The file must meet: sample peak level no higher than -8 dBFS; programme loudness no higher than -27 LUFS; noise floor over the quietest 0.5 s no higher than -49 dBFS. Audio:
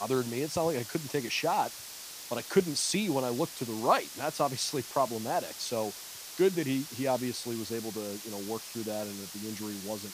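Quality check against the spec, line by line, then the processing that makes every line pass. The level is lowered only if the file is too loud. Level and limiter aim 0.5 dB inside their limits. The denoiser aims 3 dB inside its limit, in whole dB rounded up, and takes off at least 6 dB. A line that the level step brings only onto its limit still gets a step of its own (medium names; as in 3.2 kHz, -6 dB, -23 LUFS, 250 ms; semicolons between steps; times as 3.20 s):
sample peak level -11.5 dBFS: pass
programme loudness -32.0 LUFS: pass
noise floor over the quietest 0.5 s -44 dBFS: fail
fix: noise reduction 8 dB, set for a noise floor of -44 dBFS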